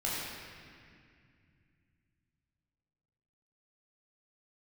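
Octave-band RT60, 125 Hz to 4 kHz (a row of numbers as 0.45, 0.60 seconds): 4.0, 3.5, 2.3, 2.1, 2.5, 1.8 seconds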